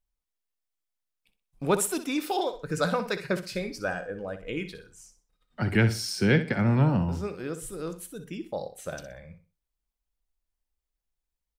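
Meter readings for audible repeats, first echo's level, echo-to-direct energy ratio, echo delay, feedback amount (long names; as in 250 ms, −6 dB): 3, −11.5 dB, −11.0 dB, 62 ms, 29%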